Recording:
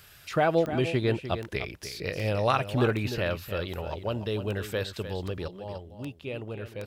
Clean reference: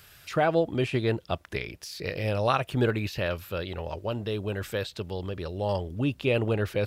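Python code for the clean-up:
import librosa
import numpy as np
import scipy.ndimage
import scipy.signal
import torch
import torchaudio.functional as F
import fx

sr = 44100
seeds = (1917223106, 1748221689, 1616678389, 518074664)

y = fx.fix_declip(x, sr, threshold_db=-11.5)
y = fx.fix_declick_ar(y, sr, threshold=10.0)
y = fx.fix_echo_inverse(y, sr, delay_ms=301, level_db=-11.0)
y = fx.fix_level(y, sr, at_s=5.48, step_db=11.0)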